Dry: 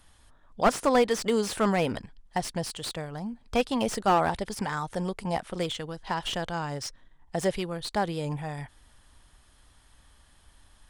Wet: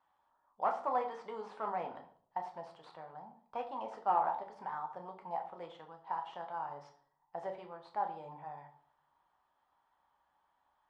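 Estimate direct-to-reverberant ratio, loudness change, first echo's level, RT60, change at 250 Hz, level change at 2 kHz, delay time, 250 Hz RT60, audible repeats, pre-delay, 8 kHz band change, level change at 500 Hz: 3.0 dB, -10.5 dB, none, 0.55 s, -24.0 dB, -17.0 dB, none, 0.60 s, none, 5 ms, under -35 dB, -14.0 dB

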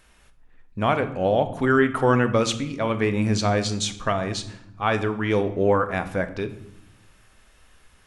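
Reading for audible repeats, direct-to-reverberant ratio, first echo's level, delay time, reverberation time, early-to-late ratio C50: none, 9.0 dB, none, none, 0.80 s, 12.5 dB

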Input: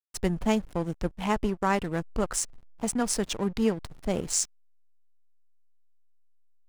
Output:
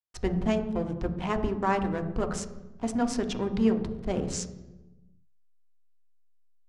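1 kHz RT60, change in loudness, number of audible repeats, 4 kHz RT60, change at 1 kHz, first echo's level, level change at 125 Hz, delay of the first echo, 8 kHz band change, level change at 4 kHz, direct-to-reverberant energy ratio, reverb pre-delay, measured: 0.95 s, -0.5 dB, none, 0.80 s, -0.5 dB, none, +1.0 dB, none, -9.5 dB, -4.5 dB, 5.5 dB, 3 ms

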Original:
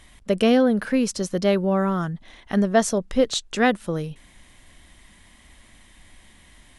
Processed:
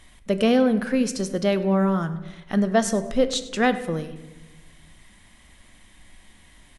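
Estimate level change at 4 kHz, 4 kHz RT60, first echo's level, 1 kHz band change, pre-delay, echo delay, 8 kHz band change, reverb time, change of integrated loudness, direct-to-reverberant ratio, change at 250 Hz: -1.0 dB, 0.60 s, -19.0 dB, -1.0 dB, 4 ms, 0.1 s, -1.5 dB, 1.1 s, -0.5 dB, 10.0 dB, -0.5 dB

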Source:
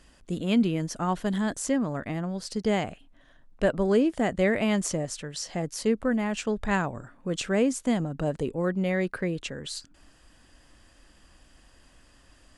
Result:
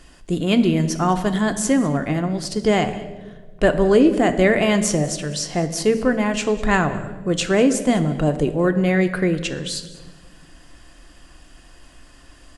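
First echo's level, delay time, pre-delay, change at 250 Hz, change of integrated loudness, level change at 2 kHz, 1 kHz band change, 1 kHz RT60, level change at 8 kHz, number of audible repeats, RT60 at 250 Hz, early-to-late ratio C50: -19.5 dB, 0.2 s, 3 ms, +7.5 dB, +8.5 dB, +9.0 dB, +9.0 dB, 1.0 s, +8.5 dB, 1, 1.7 s, 12.0 dB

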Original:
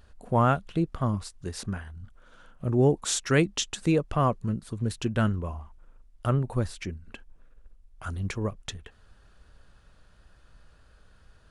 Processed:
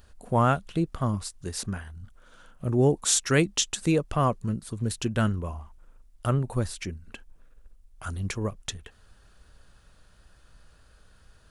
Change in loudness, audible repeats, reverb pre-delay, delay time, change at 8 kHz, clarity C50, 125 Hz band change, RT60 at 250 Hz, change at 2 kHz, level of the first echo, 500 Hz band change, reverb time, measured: +0.5 dB, none, none, none, +6.0 dB, none, 0.0 dB, none, +1.0 dB, none, 0.0 dB, none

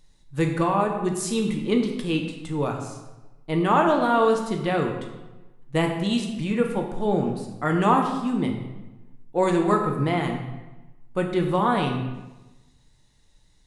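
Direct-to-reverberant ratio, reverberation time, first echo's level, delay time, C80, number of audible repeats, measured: 1.5 dB, 1.1 s, none, none, 7.5 dB, none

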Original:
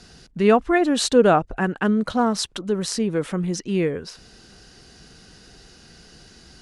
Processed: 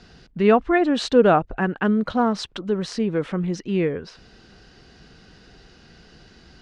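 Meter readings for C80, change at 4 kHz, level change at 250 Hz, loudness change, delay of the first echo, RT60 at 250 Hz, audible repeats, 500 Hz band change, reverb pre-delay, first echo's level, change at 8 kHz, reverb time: none, -4.0 dB, 0.0 dB, -0.5 dB, none, none, none, 0.0 dB, none, none, -11.5 dB, none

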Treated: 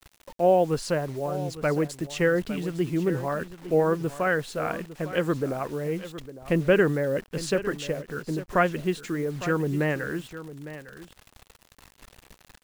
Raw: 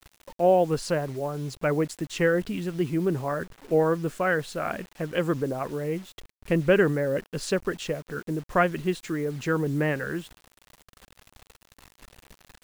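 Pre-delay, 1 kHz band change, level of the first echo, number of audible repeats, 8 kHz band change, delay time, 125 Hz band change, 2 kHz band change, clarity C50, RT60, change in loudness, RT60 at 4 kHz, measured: none, 0.0 dB, -14.0 dB, 1, 0.0 dB, 0.856 s, 0.0 dB, 0.0 dB, none, none, 0.0 dB, none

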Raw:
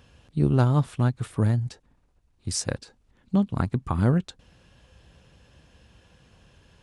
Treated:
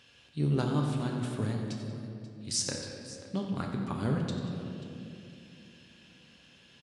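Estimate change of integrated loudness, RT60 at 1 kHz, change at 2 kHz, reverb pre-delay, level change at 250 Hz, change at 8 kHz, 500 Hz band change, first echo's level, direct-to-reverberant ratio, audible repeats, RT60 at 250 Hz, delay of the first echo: -8.5 dB, 2.3 s, -4.5 dB, 7 ms, -6.0 dB, -1.0 dB, -5.0 dB, -11.0 dB, 0.0 dB, 2, 4.3 s, 90 ms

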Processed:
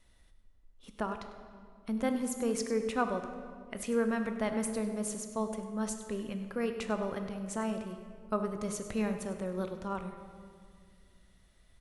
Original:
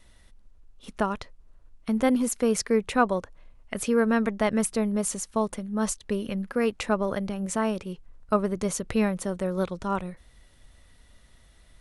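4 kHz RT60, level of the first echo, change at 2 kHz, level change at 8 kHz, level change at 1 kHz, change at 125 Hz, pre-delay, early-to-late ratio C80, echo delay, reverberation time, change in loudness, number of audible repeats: 1.4 s, -14.0 dB, -8.0 dB, -8.5 dB, -8.0 dB, -8.0 dB, 13 ms, 8.5 dB, 99 ms, 2.1 s, -8.0 dB, 1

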